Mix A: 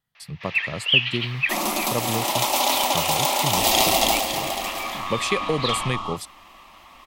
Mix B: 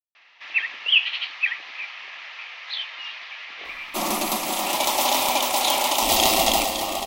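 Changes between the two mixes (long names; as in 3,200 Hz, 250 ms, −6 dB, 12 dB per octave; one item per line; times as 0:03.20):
speech: muted
second sound: entry +2.45 s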